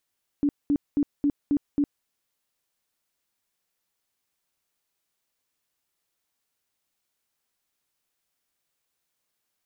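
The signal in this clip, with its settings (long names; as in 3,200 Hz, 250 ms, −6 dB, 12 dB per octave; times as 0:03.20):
tone bursts 288 Hz, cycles 17, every 0.27 s, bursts 6, −18.5 dBFS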